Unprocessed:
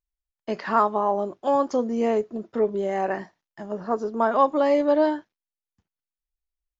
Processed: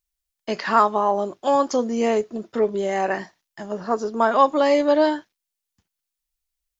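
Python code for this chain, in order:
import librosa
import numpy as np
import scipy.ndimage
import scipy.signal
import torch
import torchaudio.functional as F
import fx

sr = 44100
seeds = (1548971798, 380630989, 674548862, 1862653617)

y = fx.high_shelf(x, sr, hz=2200.0, db=11.0)
y = y * librosa.db_to_amplitude(1.5)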